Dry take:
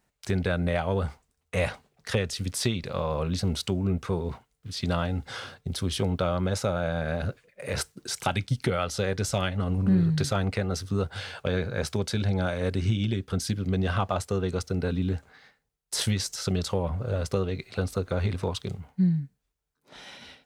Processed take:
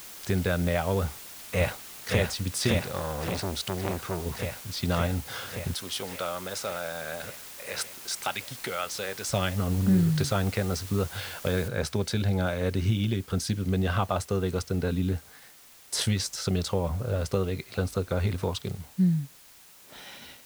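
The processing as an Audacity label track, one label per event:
1.030000	2.170000	delay throw 570 ms, feedback 80%, level −2 dB
2.790000	4.260000	saturating transformer saturates under 1,100 Hz
5.740000	9.290000	high-pass filter 940 Hz 6 dB per octave
11.680000	11.680000	noise floor change −44 dB −53 dB

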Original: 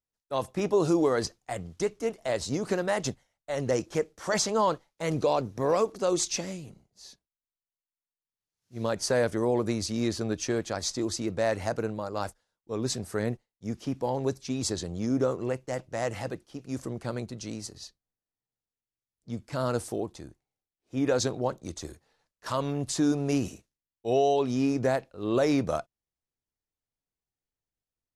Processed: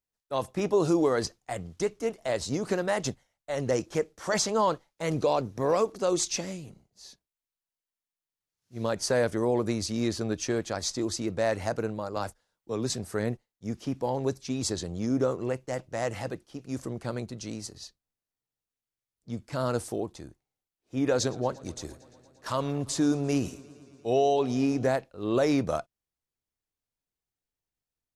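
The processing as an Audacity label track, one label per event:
12.160000	12.900000	multiband upward and downward compressor depth 40%
21.030000	24.910000	feedback echo with a swinging delay time 115 ms, feedback 79%, depth 88 cents, level −23 dB

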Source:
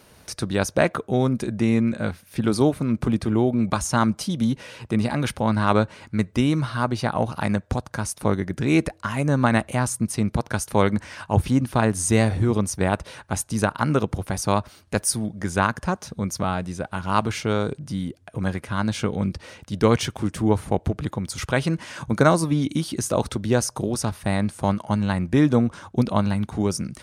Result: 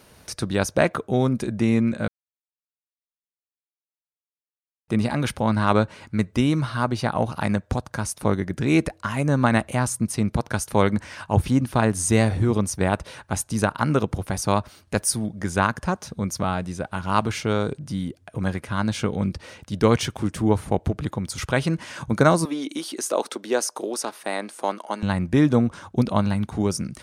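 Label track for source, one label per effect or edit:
2.080000	4.880000	silence
22.450000	25.030000	high-pass filter 310 Hz 24 dB per octave

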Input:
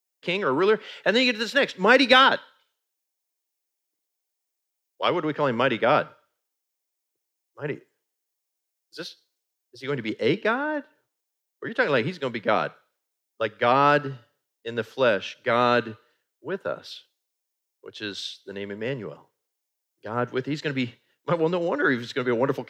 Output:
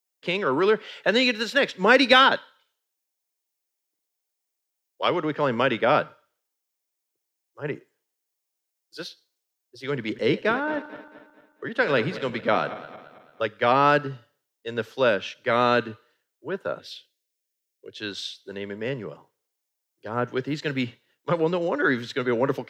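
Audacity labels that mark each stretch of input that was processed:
9.970000	13.450000	feedback delay that plays each chunk backwards 111 ms, feedback 65%, level −14 dB
16.800000	18.000000	flat-topped bell 1,000 Hz −13 dB 1.1 octaves
20.420000	20.850000	floating-point word with a short mantissa of 6 bits

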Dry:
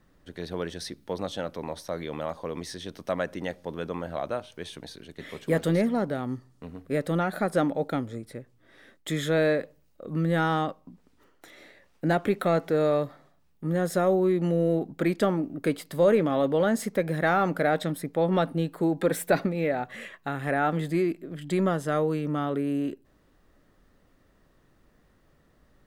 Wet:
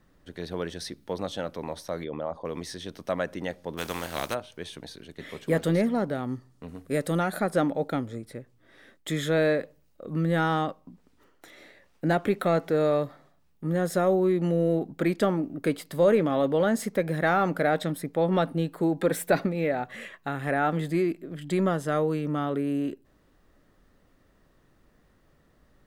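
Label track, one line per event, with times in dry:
2.040000	2.450000	spectral envelope exaggerated exponent 1.5
3.770000	4.330000	compressing power law on the bin magnitudes exponent 0.46
6.680000	7.400000	parametric band 9,500 Hz +9 dB 1.6 octaves

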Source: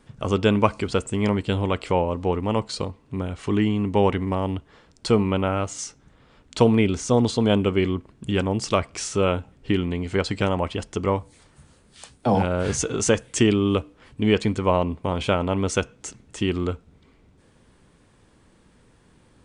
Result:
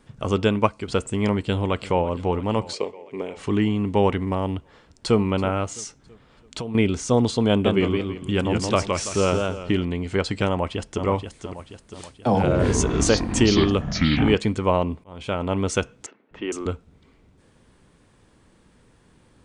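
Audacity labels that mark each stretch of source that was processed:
0.450000	0.880000	expander for the loud parts, over −31 dBFS
1.410000	2.060000	delay throw 340 ms, feedback 70%, level −17.5 dB
2.730000	3.370000	loudspeaker in its box 330–7,900 Hz, peaks and dips at 420 Hz +10 dB, 1,400 Hz −9 dB, 2,200 Hz +7 dB, 3,900 Hz −6 dB
4.570000	5.180000	delay throw 330 ms, feedback 45%, level −17.5 dB
5.710000	6.750000	downward compressor, threshold −28 dBFS
7.480000	9.850000	feedback echo with a swinging delay time 166 ms, feedback 31%, depth 119 cents, level −4 dB
10.490000	11.050000	delay throw 480 ms, feedback 50%, level −7.5 dB
12.290000	14.350000	delay with pitch and tempo change per echo 144 ms, each echo −6 semitones, echoes 3
15.040000	15.530000	fade in
16.060000	16.660000	three-band delay without the direct sound mids, lows, highs 250/460 ms, splits 280/2,800 Hz

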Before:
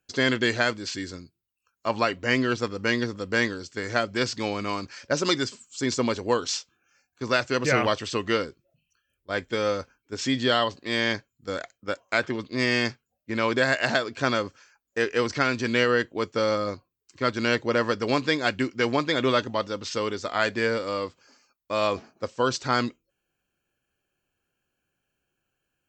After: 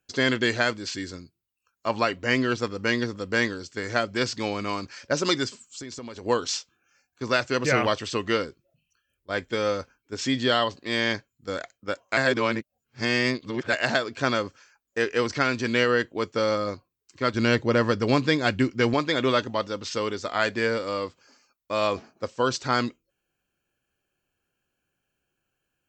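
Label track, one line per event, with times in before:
5.630000	6.260000	downward compressor 12 to 1, threshold −34 dBFS
12.170000	13.730000	reverse
17.340000	18.940000	low-shelf EQ 200 Hz +10.5 dB

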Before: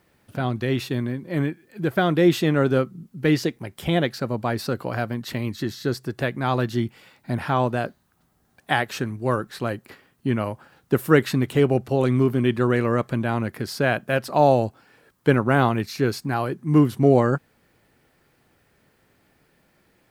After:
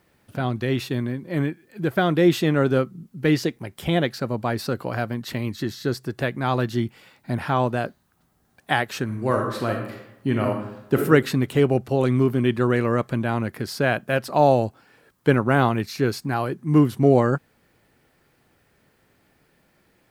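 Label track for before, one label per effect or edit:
9.040000	10.960000	thrown reverb, RT60 0.84 s, DRR 1.5 dB

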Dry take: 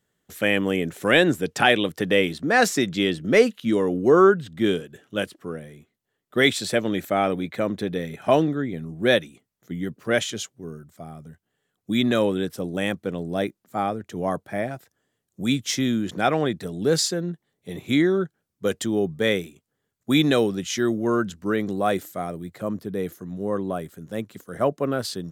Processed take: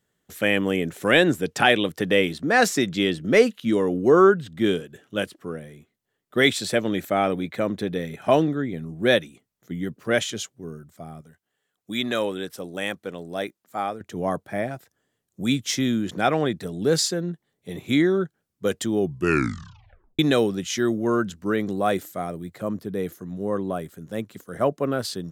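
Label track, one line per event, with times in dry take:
11.210000	14.010000	low-shelf EQ 340 Hz −11.5 dB
19.000000	19.000000	tape stop 1.19 s

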